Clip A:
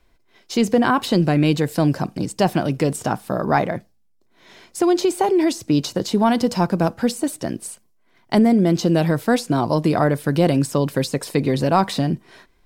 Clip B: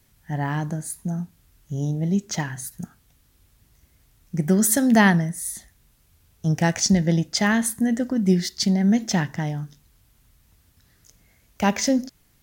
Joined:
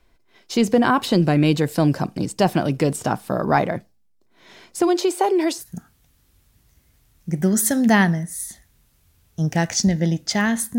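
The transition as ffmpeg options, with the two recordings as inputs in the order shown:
ffmpeg -i cue0.wav -i cue1.wav -filter_complex "[0:a]asplit=3[link_01][link_02][link_03];[link_01]afade=type=out:start_time=4.87:duration=0.02[link_04];[link_02]highpass=frequency=330:width=0.5412,highpass=frequency=330:width=1.3066,afade=type=in:start_time=4.87:duration=0.02,afade=type=out:start_time=5.63:duration=0.02[link_05];[link_03]afade=type=in:start_time=5.63:duration=0.02[link_06];[link_04][link_05][link_06]amix=inputs=3:normalize=0,apad=whole_dur=10.78,atrim=end=10.78,atrim=end=5.63,asetpts=PTS-STARTPTS[link_07];[1:a]atrim=start=2.63:end=7.84,asetpts=PTS-STARTPTS[link_08];[link_07][link_08]acrossfade=duration=0.06:curve1=tri:curve2=tri" out.wav

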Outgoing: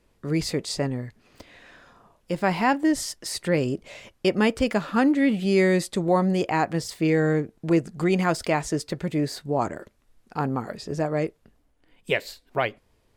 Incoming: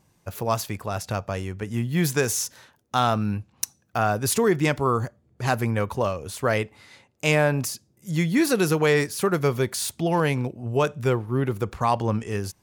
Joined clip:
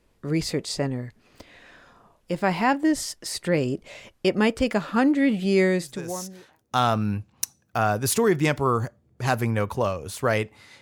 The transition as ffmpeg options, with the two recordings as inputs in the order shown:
ffmpeg -i cue0.wav -i cue1.wav -filter_complex "[0:a]apad=whole_dur=10.81,atrim=end=10.81,atrim=end=6.64,asetpts=PTS-STARTPTS[link_01];[1:a]atrim=start=1.82:end=7.01,asetpts=PTS-STARTPTS[link_02];[link_01][link_02]acrossfade=duration=1.02:curve1=qua:curve2=qua" out.wav

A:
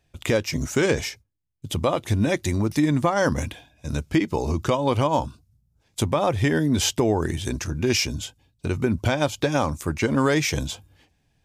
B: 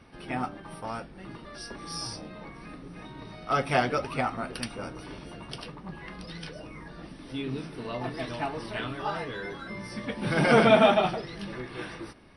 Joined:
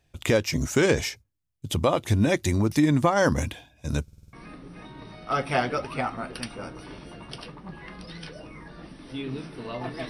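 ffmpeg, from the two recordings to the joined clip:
ffmpeg -i cue0.wav -i cue1.wav -filter_complex "[0:a]apad=whole_dur=10.09,atrim=end=10.09,asplit=6[link_01][link_02][link_03][link_04][link_05][link_06];[link_01]atrim=end=4.082[link_07];[link_02]atrim=start=4.028:end=4.082[link_08];[link_03]atrim=start=4.028:end=4.082[link_09];[link_04]atrim=start=4.028:end=4.082[link_10];[link_05]atrim=start=4.028:end=4.082[link_11];[link_06]atrim=start=4.028:end=4.082[link_12];[1:a]atrim=start=2.528:end=8.29[link_13];[link_07][link_08]acrossfade=duration=0.004:curve1=hsin:curve2=hsin[link_14];[link_14][link_09]acrossfade=duration=0.004:curve1=hsin:curve2=hsin[link_15];[link_15][link_10]acrossfade=duration=0.004:curve1=hsin:curve2=hsin[link_16];[link_16][link_11]acrossfade=duration=0.004:curve1=hsin:curve2=hsin[link_17];[link_17][link_12]acrossfade=duration=0.004:curve1=hsin:curve2=hsin[link_18];[link_18][link_13]acrossfade=duration=0.004:curve1=hsin:curve2=hsin" out.wav

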